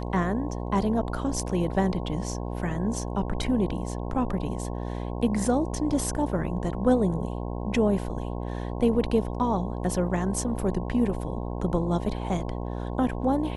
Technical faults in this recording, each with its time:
mains buzz 60 Hz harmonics 18 −32 dBFS

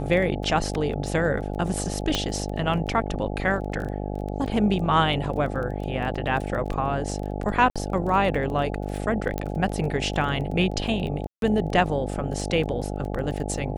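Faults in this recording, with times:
mains buzz 50 Hz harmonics 17 −30 dBFS
surface crackle 14 per second −31 dBFS
0:02.15: click −8 dBFS
0:07.70–0:07.76: drop-out 56 ms
0:09.38: click −14 dBFS
0:11.27–0:11.42: drop-out 152 ms

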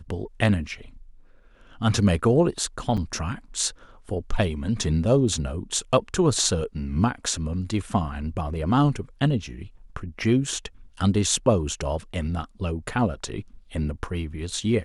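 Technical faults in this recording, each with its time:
0:02.97–0:02.98: drop-out 5.8 ms

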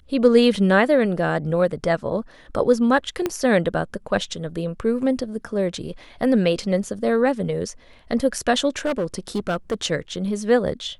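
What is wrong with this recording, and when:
0:03.26: click −9 dBFS
0:08.78–0:09.74: clipping −18 dBFS

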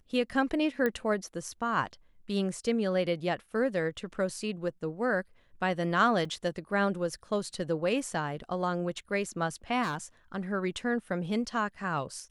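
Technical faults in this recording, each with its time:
0:00.86: click −17 dBFS
0:06.25: drop-out 3.8 ms
0:09.82–0:09.96: clipping −28 dBFS

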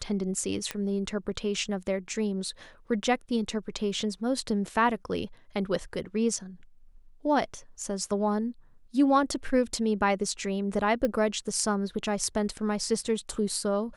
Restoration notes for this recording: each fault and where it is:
0:00.71: click −15 dBFS
0:11.05: click −16 dBFS

